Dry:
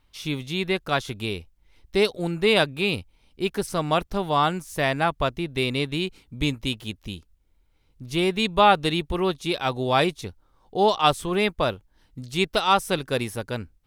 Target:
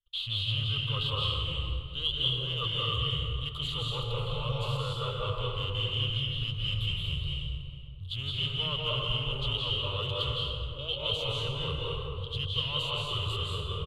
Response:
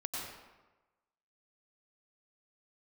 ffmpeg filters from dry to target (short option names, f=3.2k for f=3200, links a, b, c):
-filter_complex "[0:a]agate=range=-36dB:threshold=-58dB:ratio=16:detection=peak,acrossover=split=140|880[a][b][c];[b]alimiter=limit=-21dB:level=0:latency=1:release=229[d];[a][d][c]amix=inputs=3:normalize=0,highshelf=f=3.8k:t=q:w=3:g=6,areverse,acompressor=threshold=-35dB:ratio=6,areverse,asoftclip=type=tanh:threshold=-33.5dB,asetrate=33038,aresample=44100,atempo=1.33484,firequalizer=gain_entry='entry(130,0);entry(200,-24);entry(310,-24);entry(480,-2);entry(730,-21);entry(1200,3);entry(1700,-25);entry(3100,8);entry(5500,-24);entry(11000,-14)':delay=0.05:min_phase=1,asplit=2[e][f];[f]adelay=419.8,volume=-13dB,highshelf=f=4k:g=-9.45[g];[e][g]amix=inputs=2:normalize=0[h];[1:a]atrim=start_sample=2205,asetrate=24255,aresample=44100[i];[h][i]afir=irnorm=-1:irlink=0,volume=7dB"